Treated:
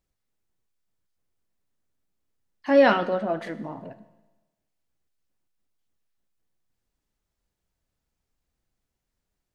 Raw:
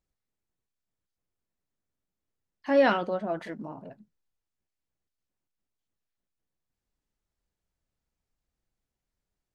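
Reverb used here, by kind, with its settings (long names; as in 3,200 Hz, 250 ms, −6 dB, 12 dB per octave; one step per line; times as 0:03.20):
four-comb reverb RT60 1.1 s, combs from 25 ms, DRR 13.5 dB
level +4 dB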